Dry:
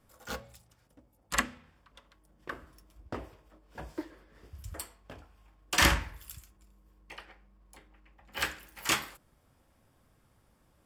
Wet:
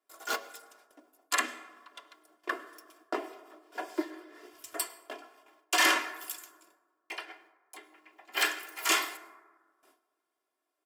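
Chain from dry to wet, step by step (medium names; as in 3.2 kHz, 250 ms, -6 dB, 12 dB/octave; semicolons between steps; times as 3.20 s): high-pass 350 Hz 24 dB/octave; gate with hold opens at -59 dBFS; comb 2.9 ms, depth 86%; peak limiter -19 dBFS, peak gain reduction 11 dB; plate-style reverb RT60 1.5 s, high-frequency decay 0.35×, pre-delay 90 ms, DRR 17 dB; trim +5.5 dB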